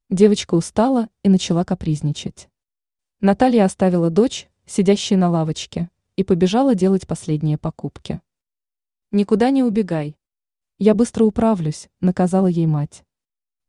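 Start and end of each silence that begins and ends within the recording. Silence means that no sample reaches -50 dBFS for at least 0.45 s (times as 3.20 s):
2.46–3.21 s
8.20–9.12 s
10.13–10.80 s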